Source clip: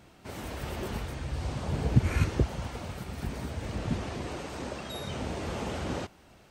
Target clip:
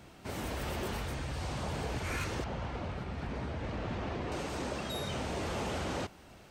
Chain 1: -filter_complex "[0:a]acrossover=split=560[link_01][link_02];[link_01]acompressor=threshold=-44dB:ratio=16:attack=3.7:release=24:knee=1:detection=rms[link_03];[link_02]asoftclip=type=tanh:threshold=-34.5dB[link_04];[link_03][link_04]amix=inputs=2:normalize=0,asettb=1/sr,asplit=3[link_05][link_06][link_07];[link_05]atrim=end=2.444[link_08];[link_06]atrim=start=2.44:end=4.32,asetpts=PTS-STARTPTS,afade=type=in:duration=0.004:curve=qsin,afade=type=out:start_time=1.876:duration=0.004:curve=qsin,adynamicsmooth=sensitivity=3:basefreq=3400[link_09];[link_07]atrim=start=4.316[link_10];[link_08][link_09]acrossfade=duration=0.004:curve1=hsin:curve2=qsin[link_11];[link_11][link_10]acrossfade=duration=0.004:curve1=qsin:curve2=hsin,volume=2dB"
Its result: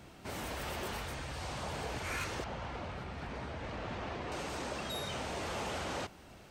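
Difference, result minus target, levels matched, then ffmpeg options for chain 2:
downward compressor: peak gain reduction +6 dB
-filter_complex "[0:a]acrossover=split=560[link_01][link_02];[link_01]acompressor=threshold=-37.5dB:ratio=16:attack=3.7:release=24:knee=1:detection=rms[link_03];[link_02]asoftclip=type=tanh:threshold=-34.5dB[link_04];[link_03][link_04]amix=inputs=2:normalize=0,asettb=1/sr,asplit=3[link_05][link_06][link_07];[link_05]atrim=end=2.444[link_08];[link_06]atrim=start=2.44:end=4.32,asetpts=PTS-STARTPTS,afade=type=in:duration=0.004:curve=qsin,afade=type=out:start_time=1.876:duration=0.004:curve=qsin,adynamicsmooth=sensitivity=3:basefreq=3400[link_09];[link_07]atrim=start=4.316[link_10];[link_08][link_09]acrossfade=duration=0.004:curve1=hsin:curve2=qsin[link_11];[link_11][link_10]acrossfade=duration=0.004:curve1=qsin:curve2=hsin,volume=2dB"

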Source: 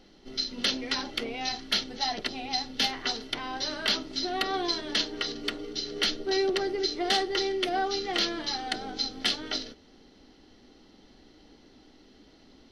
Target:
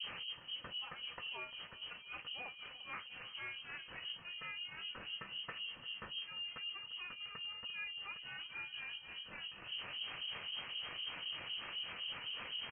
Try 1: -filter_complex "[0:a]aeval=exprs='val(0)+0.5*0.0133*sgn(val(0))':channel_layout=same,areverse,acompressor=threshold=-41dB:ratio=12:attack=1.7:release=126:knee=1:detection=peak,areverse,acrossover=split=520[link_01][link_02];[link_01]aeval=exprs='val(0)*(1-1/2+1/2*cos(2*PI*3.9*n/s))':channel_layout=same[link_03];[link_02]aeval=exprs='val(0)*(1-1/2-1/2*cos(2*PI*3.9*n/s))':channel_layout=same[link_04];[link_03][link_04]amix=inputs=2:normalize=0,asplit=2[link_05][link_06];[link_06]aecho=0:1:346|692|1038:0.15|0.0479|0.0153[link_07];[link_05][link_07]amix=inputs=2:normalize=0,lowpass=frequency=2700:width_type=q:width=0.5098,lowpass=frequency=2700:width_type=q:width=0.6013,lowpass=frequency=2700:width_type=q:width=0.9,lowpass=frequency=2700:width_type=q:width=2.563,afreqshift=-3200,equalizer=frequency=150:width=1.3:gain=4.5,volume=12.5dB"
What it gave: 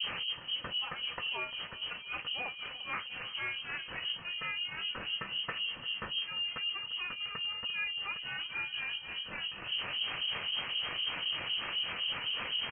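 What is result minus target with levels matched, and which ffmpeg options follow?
downward compressor: peak gain reduction −8.5 dB
-filter_complex "[0:a]aeval=exprs='val(0)+0.5*0.0133*sgn(val(0))':channel_layout=same,areverse,acompressor=threshold=-50.5dB:ratio=12:attack=1.7:release=126:knee=1:detection=peak,areverse,acrossover=split=520[link_01][link_02];[link_01]aeval=exprs='val(0)*(1-1/2+1/2*cos(2*PI*3.9*n/s))':channel_layout=same[link_03];[link_02]aeval=exprs='val(0)*(1-1/2-1/2*cos(2*PI*3.9*n/s))':channel_layout=same[link_04];[link_03][link_04]amix=inputs=2:normalize=0,asplit=2[link_05][link_06];[link_06]aecho=0:1:346|692|1038:0.15|0.0479|0.0153[link_07];[link_05][link_07]amix=inputs=2:normalize=0,lowpass=frequency=2700:width_type=q:width=0.5098,lowpass=frequency=2700:width_type=q:width=0.6013,lowpass=frequency=2700:width_type=q:width=0.9,lowpass=frequency=2700:width_type=q:width=2.563,afreqshift=-3200,equalizer=frequency=150:width=1.3:gain=4.5,volume=12.5dB"

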